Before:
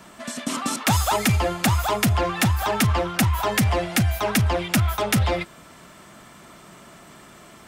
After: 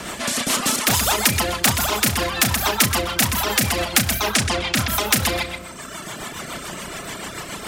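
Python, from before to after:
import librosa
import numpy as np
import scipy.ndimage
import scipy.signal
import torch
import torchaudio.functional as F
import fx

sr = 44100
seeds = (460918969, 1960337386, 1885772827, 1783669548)

p1 = fx.lowpass(x, sr, hz=fx.line((4.19, 11000.0), (4.75, 5400.0)), slope=24, at=(4.19, 4.75), fade=0.02)
p2 = fx.echo_feedback(p1, sr, ms=126, feedback_pct=25, wet_db=-8.0)
p3 = 10.0 ** (-23.5 / 20.0) * np.tanh(p2 / 10.0 ** (-23.5 / 20.0))
p4 = p2 + F.gain(torch.from_numpy(p3), -3.5).numpy()
p5 = fx.room_flutter(p4, sr, wall_m=5.6, rt60_s=0.33)
p6 = fx.dereverb_blind(p5, sr, rt60_s=1.3)
p7 = fx.rotary(p6, sr, hz=7.0)
p8 = fx.spectral_comp(p7, sr, ratio=2.0)
y = F.gain(torch.from_numpy(p8), 4.5).numpy()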